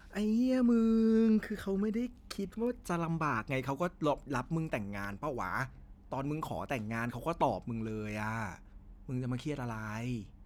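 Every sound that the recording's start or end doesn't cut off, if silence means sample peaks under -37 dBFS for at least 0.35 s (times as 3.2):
6.12–8.56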